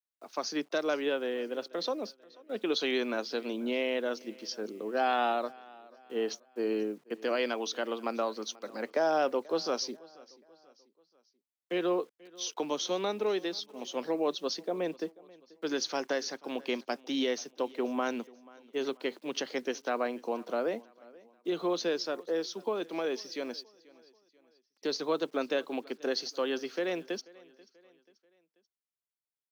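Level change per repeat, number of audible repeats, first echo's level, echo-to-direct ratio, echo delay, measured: -7.0 dB, 2, -23.0 dB, -22.0 dB, 486 ms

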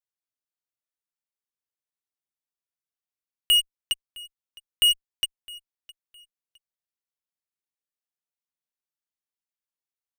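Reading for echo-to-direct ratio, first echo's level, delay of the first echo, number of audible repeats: -21.5 dB, -22.0 dB, 661 ms, 2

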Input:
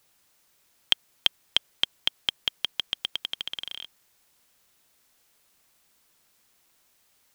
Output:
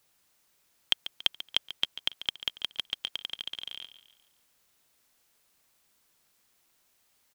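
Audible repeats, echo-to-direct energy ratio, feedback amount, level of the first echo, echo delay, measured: 3, -12.5 dB, 43%, -13.5 dB, 141 ms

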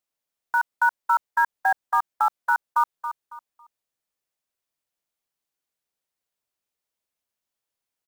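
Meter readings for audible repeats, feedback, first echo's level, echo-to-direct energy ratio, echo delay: 3, 29%, -10.0 dB, -9.5 dB, 276 ms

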